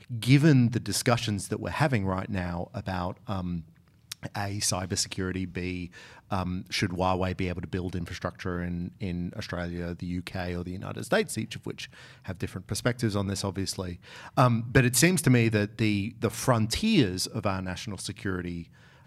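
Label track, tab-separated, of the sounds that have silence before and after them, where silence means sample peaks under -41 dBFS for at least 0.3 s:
4.120000	18.640000	sound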